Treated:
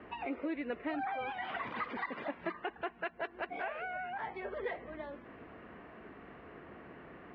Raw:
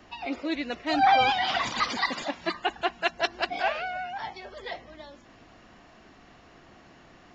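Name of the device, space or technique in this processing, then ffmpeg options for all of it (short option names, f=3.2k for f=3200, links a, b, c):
bass amplifier: -af "acompressor=threshold=-37dB:ratio=5,highpass=62,equalizer=f=110:t=q:w=4:g=-5,equalizer=f=440:t=q:w=4:g=7,equalizer=f=760:t=q:w=4:g=-4,lowpass=f=2.3k:w=0.5412,lowpass=f=2.3k:w=1.3066,volume=2dB"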